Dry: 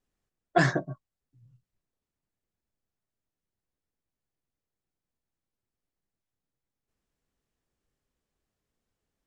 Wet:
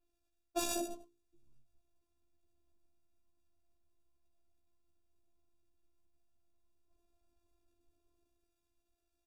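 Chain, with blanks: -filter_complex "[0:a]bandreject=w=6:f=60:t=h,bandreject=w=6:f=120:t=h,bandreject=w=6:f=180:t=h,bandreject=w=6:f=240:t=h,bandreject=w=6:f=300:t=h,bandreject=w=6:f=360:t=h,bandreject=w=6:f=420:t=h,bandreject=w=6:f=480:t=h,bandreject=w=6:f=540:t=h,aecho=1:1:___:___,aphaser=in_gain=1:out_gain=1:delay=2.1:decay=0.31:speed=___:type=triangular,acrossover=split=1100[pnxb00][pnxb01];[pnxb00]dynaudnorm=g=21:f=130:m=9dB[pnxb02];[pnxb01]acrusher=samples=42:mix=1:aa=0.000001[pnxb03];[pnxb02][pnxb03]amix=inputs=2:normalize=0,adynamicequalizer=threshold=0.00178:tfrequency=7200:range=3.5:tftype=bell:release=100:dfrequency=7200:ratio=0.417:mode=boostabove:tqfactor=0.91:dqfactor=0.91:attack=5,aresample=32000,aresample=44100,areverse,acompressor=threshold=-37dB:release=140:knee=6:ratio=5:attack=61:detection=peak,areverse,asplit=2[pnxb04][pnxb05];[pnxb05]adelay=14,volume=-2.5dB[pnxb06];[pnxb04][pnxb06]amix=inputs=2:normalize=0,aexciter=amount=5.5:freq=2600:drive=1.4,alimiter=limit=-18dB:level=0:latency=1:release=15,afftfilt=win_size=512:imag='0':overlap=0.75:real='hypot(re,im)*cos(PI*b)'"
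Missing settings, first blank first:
97, 0.15, 0.37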